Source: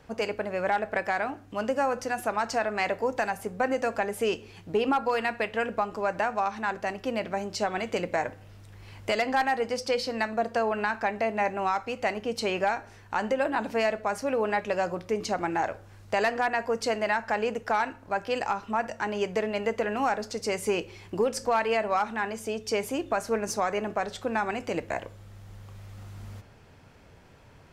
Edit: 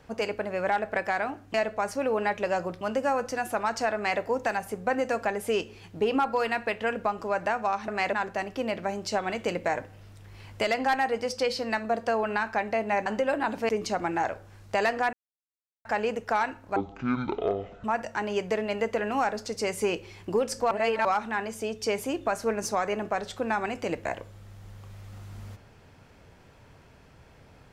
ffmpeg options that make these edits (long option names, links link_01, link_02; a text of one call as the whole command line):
ffmpeg -i in.wav -filter_complex "[0:a]asplit=13[link_01][link_02][link_03][link_04][link_05][link_06][link_07][link_08][link_09][link_10][link_11][link_12][link_13];[link_01]atrim=end=1.542[link_14];[link_02]atrim=start=13.808:end=15.082[link_15];[link_03]atrim=start=1.538:end=6.612[link_16];[link_04]atrim=start=2.678:end=2.932[link_17];[link_05]atrim=start=6.608:end=11.542[link_18];[link_06]atrim=start=13.178:end=13.812[link_19];[link_07]atrim=start=15.078:end=16.52,asetpts=PTS-STARTPTS,afade=type=out:start_time=1.438:duration=0.004:curve=hsin[link_20];[link_08]atrim=start=16.52:end=17.24,asetpts=PTS-STARTPTS,volume=0[link_21];[link_09]atrim=start=17.24:end=18.154,asetpts=PTS-STARTPTS,afade=type=in:duration=0.004:curve=hsin[link_22];[link_10]atrim=start=18.15:end=18.69,asetpts=PTS-STARTPTS,asetrate=22050,aresample=44100[link_23];[link_11]atrim=start=18.686:end=21.562[link_24];[link_12]atrim=start=21.558:end=21.902,asetpts=PTS-STARTPTS,areverse[link_25];[link_13]atrim=start=21.898[link_26];[link_14][link_15]acrossfade=duration=0.004:curve1=hsin:curve2=hsin[link_27];[link_27][link_16]acrossfade=duration=0.004:curve1=hsin:curve2=hsin[link_28];[link_28][link_17]acrossfade=duration=0.004:curve1=hsin:curve2=hsin[link_29];[link_29][link_18]acrossfade=duration=0.004:curve1=hsin:curve2=hsin[link_30];[link_30][link_19]acrossfade=duration=0.004:curve1=hsin:curve2=hsin[link_31];[link_20][link_21][link_22]concat=n=3:v=0:a=1[link_32];[link_31][link_32]acrossfade=duration=0.004:curve1=hsin:curve2=hsin[link_33];[link_33][link_23]acrossfade=duration=0.004:curve1=hsin:curve2=hsin[link_34];[link_34][link_24]acrossfade=duration=0.004:curve1=hsin:curve2=hsin[link_35];[link_35][link_25]acrossfade=duration=0.004:curve1=hsin:curve2=hsin[link_36];[link_36][link_26]acrossfade=duration=0.004:curve1=hsin:curve2=hsin" out.wav